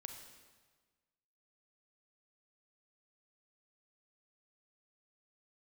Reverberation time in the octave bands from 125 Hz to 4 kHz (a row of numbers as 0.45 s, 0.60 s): 1.6 s, 1.5 s, 1.4 s, 1.4 s, 1.3 s, 1.3 s